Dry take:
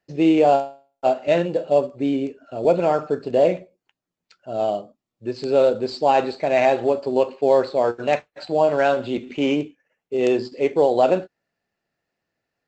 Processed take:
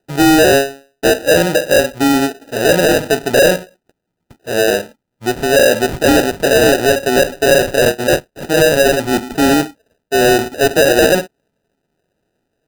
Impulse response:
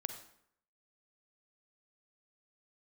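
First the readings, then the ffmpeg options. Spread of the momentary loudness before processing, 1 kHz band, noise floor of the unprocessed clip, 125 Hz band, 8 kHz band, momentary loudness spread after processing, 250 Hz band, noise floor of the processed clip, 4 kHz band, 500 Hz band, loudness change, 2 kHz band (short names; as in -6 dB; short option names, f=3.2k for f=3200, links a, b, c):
10 LU, +4.0 dB, -85 dBFS, +10.5 dB, n/a, 8 LU, +8.0 dB, -75 dBFS, +17.0 dB, +6.0 dB, +7.5 dB, +16.5 dB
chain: -af "acrusher=samples=40:mix=1:aa=0.000001,aeval=exprs='0.473*(cos(1*acos(clip(val(0)/0.473,-1,1)))-cos(1*PI/2))+0.0944*(cos(5*acos(clip(val(0)/0.473,-1,1)))-cos(5*PI/2))':c=same,volume=4.5dB"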